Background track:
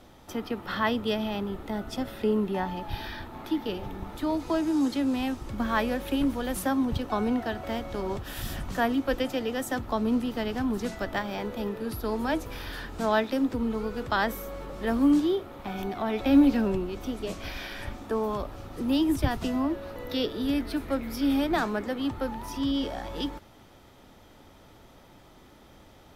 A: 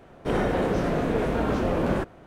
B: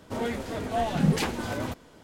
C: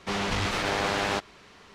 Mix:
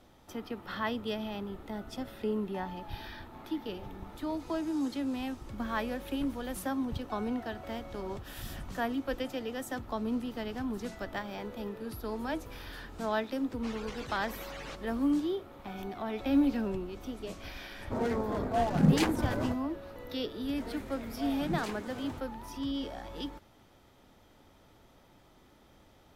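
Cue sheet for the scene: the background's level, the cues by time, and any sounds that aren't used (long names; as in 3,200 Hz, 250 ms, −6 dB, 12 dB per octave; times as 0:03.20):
background track −7 dB
0:13.56: mix in C −12.5 dB + harmonic-percussive split with one part muted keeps percussive
0:17.80: mix in B −1 dB + adaptive Wiener filter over 15 samples
0:20.46: mix in B −13.5 dB
not used: A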